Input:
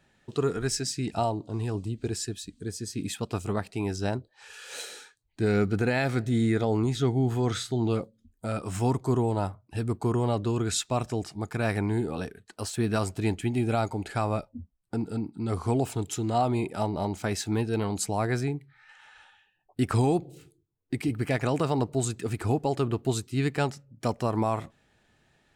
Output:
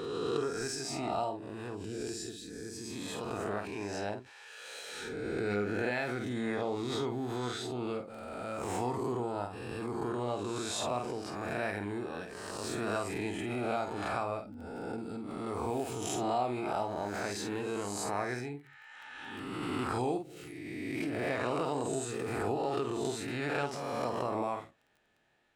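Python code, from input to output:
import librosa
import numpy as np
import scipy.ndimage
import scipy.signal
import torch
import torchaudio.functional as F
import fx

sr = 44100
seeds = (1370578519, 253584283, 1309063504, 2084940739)

y = fx.spec_swells(x, sr, rise_s=0.92)
y = fx.low_shelf(y, sr, hz=130.0, db=-3.0)
y = fx.doubler(y, sr, ms=49.0, db=-7.0)
y = fx.dmg_crackle(y, sr, seeds[0], per_s=10.0, level_db=-42.0)
y = fx.bass_treble(y, sr, bass_db=-8, treble_db=-6)
y = fx.pre_swell(y, sr, db_per_s=22.0)
y = y * librosa.db_to_amplitude(-8.0)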